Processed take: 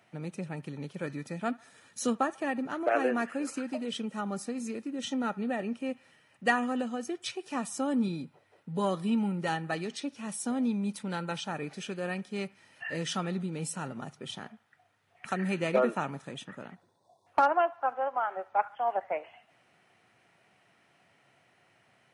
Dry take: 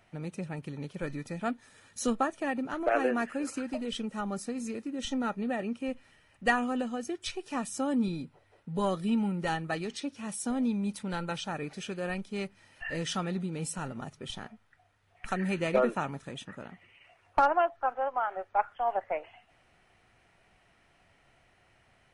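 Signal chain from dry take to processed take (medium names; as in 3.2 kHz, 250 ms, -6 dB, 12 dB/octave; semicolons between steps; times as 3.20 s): high-pass 120 Hz 24 dB/octave; spectral selection erased 16.75–17.27 s, 1.1–3.4 kHz; feedback echo behind a band-pass 71 ms, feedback 52%, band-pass 1.4 kHz, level -22 dB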